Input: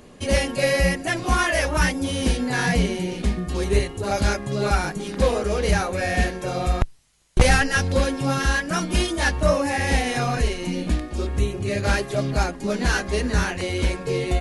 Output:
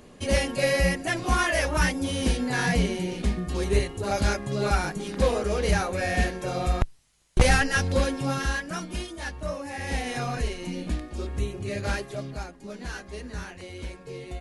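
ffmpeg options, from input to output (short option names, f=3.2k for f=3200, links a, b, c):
-af "volume=3.5dB,afade=t=out:st=8.03:d=1.03:silence=0.316228,afade=t=in:st=9.65:d=0.47:silence=0.473151,afade=t=out:st=11.84:d=0.6:silence=0.398107"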